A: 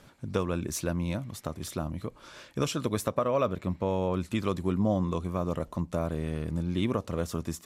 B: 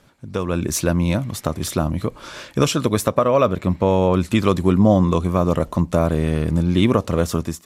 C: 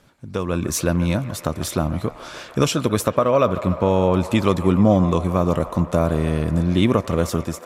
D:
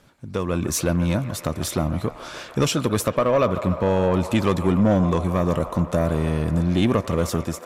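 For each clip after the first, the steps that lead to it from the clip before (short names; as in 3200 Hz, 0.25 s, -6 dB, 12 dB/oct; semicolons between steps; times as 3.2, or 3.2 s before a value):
AGC gain up to 13.5 dB
band-limited delay 0.146 s, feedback 79%, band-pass 1100 Hz, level -12.5 dB; gain -1 dB
soft clip -11 dBFS, distortion -15 dB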